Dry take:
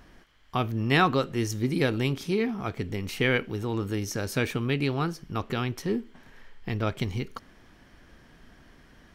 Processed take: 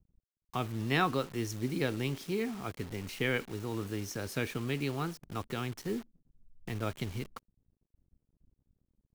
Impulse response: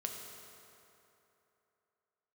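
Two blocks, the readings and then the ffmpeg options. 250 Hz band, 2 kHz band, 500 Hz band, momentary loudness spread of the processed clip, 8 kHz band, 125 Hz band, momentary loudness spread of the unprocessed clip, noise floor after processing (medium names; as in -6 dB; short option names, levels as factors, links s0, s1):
-7.0 dB, -7.0 dB, -7.0 dB, 9 LU, -5.0 dB, -7.5 dB, 9 LU, under -85 dBFS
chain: -filter_complex "[0:a]acrossover=split=190[s0][s1];[s0]aeval=exprs='sgn(val(0))*max(abs(val(0))-0.00158,0)':c=same[s2];[s1]acrusher=bits=6:mix=0:aa=0.000001[s3];[s2][s3]amix=inputs=2:normalize=0,volume=0.447"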